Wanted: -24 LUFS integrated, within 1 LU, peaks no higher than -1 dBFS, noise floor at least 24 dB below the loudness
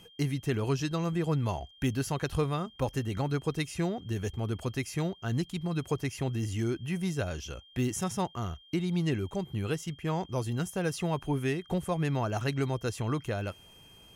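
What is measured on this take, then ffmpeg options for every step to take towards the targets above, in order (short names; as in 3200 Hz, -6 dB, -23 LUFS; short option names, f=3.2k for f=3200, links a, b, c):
steady tone 3200 Hz; tone level -55 dBFS; loudness -32.5 LUFS; peak -16.0 dBFS; loudness target -24.0 LUFS
-> -af "bandreject=f=3.2k:w=30"
-af "volume=8.5dB"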